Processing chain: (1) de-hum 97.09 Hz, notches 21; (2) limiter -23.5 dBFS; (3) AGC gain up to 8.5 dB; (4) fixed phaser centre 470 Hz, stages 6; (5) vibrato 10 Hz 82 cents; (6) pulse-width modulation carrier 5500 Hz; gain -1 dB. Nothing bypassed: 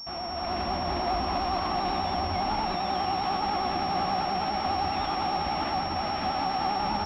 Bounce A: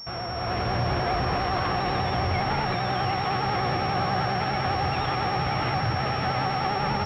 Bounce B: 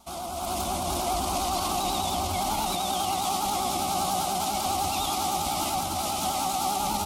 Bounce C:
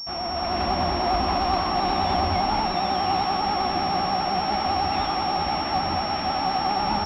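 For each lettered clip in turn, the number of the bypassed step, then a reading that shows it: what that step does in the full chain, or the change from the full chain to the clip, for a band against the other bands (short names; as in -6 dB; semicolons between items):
4, 125 Hz band +8.0 dB; 6, 4 kHz band +3.0 dB; 2, mean gain reduction 4.5 dB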